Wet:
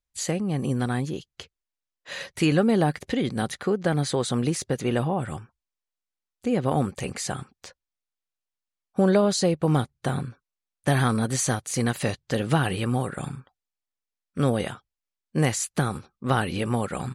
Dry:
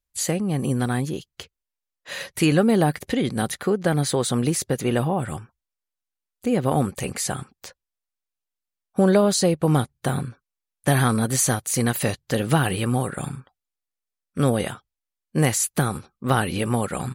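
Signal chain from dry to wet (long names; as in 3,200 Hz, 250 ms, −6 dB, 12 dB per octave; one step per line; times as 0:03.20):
low-pass filter 8,000 Hz 12 dB per octave
level −2.5 dB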